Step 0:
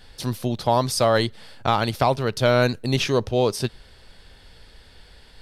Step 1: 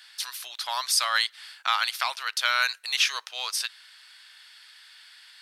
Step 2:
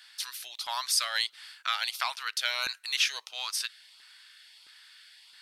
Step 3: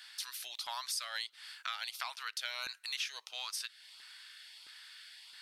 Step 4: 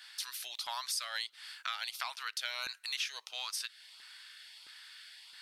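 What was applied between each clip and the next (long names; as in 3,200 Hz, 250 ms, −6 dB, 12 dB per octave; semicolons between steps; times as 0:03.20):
high-pass filter 1,300 Hz 24 dB per octave; level +3.5 dB
auto-filter notch saw up 1.5 Hz 340–1,900 Hz; level −3 dB
downward compressor 2.5 to 1, threshold −42 dBFS, peak gain reduction 14 dB; level +1 dB
one half of a high-frequency compander decoder only; level +1.5 dB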